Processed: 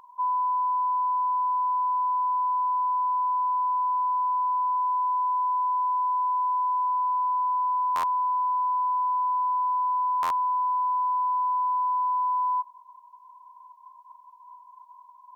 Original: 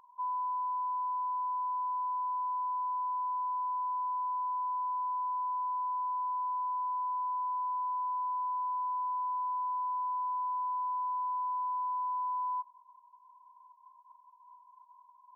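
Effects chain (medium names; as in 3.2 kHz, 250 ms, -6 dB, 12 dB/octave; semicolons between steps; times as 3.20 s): 4.76–6.87 s: tone controls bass -3 dB, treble +10 dB; buffer glitch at 7.95/10.22 s, samples 512, times 6; trim +8.5 dB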